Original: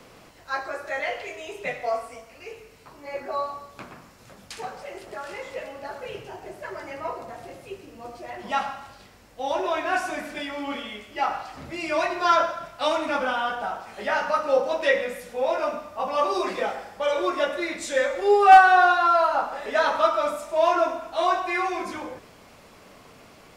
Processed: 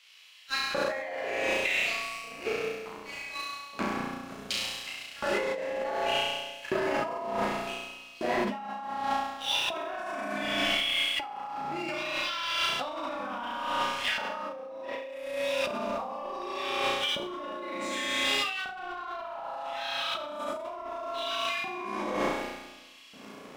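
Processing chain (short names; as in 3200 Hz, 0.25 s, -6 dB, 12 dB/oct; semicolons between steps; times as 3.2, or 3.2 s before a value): LFO high-pass square 0.67 Hz 210–3000 Hz; dynamic EQ 920 Hz, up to +5 dB, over -35 dBFS, Q 1.3; Schroeder reverb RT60 1.5 s, combs from 32 ms, DRR 2.5 dB; sample leveller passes 2; limiter -12.5 dBFS, peak gain reduction 11.5 dB; high shelf 4500 Hz -7.5 dB; flutter echo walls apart 5.8 m, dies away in 1.1 s; negative-ratio compressor -26 dBFS, ratio -1; gain -7 dB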